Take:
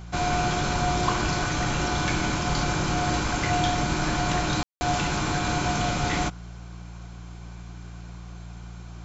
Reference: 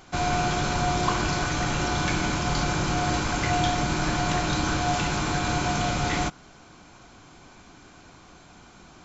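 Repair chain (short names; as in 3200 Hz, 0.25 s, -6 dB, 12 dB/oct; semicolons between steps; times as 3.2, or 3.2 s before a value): de-hum 58.1 Hz, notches 3; room tone fill 4.63–4.81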